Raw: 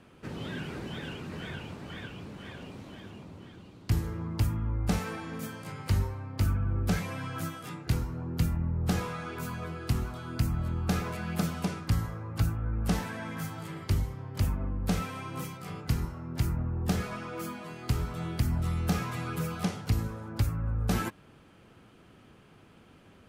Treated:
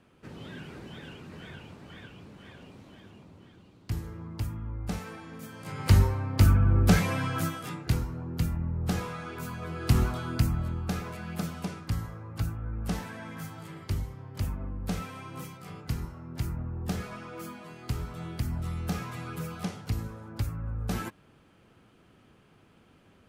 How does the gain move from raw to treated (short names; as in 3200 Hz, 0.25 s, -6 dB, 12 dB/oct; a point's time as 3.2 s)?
5.47 s -5.5 dB
5.89 s +7.5 dB
7.11 s +7.5 dB
8.25 s -1 dB
9.6 s -1 dB
10.02 s +8 dB
10.94 s -3.5 dB